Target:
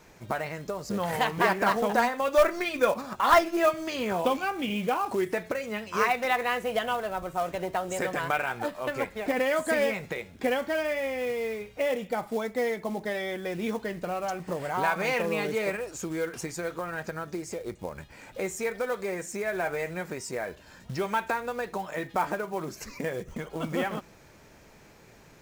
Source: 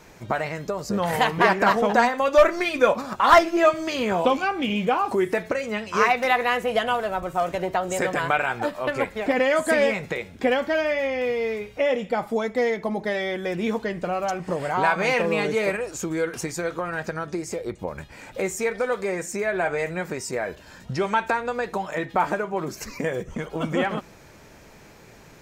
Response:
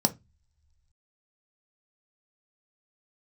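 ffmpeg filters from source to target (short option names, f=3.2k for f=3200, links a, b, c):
-af "acrusher=bits=5:mode=log:mix=0:aa=0.000001,volume=-5.5dB"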